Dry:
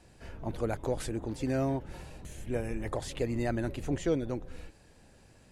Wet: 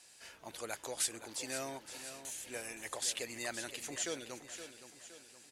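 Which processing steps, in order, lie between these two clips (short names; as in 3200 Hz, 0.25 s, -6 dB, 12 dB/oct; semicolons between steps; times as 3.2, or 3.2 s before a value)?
band-pass 7400 Hz, Q 0.52; high shelf 6700 Hz +5.5 dB; feedback echo 0.518 s, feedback 47%, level -11 dB; gain +7 dB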